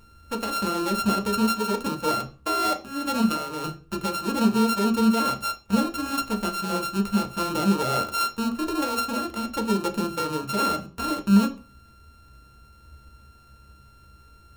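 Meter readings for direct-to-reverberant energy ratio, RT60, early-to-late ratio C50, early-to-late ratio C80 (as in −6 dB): 2.0 dB, non-exponential decay, 13.5 dB, 20.0 dB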